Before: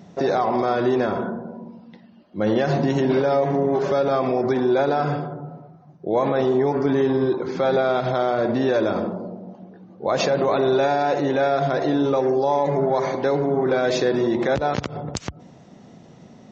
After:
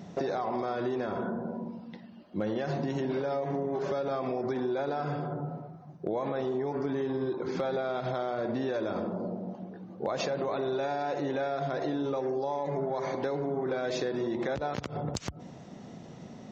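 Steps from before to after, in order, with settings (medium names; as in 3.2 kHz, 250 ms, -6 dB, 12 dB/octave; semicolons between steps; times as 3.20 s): compression 6:1, threshold -29 dBFS, peak gain reduction 13 dB; hard clipper -20.5 dBFS, distortion -33 dB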